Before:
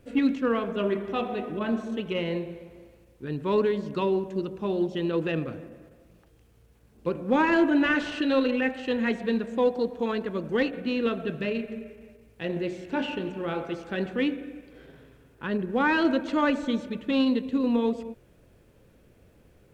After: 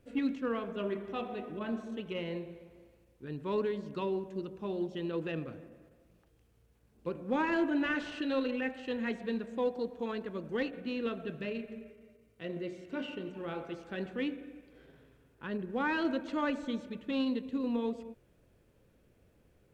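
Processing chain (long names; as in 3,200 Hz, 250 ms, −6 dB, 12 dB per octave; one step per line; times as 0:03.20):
0:11.91–0:13.35: notch comb filter 850 Hz
level −8.5 dB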